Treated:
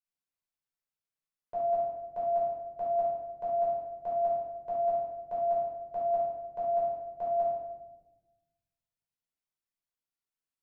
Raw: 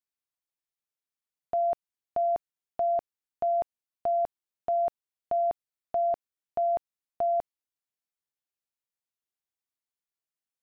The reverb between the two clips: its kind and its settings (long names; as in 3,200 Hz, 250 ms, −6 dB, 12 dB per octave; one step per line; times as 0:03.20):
rectangular room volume 530 cubic metres, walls mixed, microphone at 5 metres
level −13.5 dB